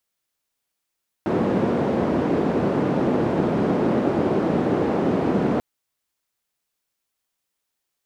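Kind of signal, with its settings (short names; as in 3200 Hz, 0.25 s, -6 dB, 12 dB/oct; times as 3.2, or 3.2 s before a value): noise band 200–340 Hz, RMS -21 dBFS 4.34 s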